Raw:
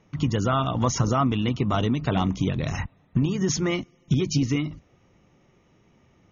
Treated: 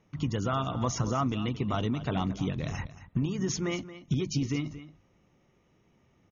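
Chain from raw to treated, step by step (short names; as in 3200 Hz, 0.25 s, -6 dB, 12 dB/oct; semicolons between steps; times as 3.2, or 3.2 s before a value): echo 0.226 s -14.5 dB; gain -6.5 dB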